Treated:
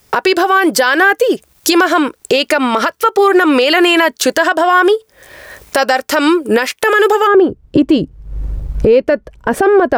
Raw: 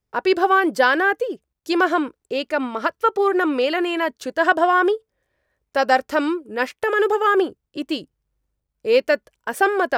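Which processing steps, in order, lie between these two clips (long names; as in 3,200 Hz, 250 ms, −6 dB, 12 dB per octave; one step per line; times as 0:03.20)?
camcorder AGC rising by 12 dB per second
spectral tilt +2 dB per octave, from 0:07.26 −3.5 dB per octave
downward compressor 4 to 1, threshold −39 dBFS, peak gain reduction 24.5 dB
boost into a limiter +30.5 dB
level −1 dB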